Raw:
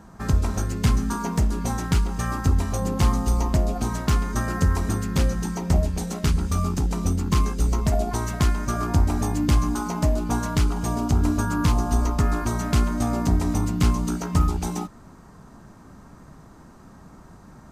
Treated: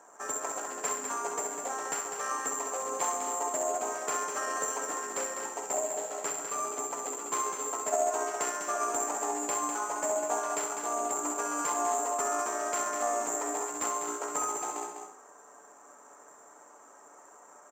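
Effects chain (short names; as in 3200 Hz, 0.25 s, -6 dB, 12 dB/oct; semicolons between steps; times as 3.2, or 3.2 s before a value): tracing distortion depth 0.38 ms; high shelf 6000 Hz -10.5 dB; comb 6.9 ms, depth 40%; flutter echo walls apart 11.2 m, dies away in 0.53 s; careless resampling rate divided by 6×, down filtered, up zero stuff; HPF 470 Hz 24 dB/oct; tape spacing loss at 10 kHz 27 dB; on a send: echo 0.201 s -7 dB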